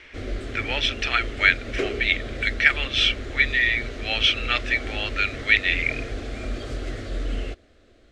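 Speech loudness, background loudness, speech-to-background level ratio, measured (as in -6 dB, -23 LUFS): -22.0 LUFS, -33.0 LUFS, 11.0 dB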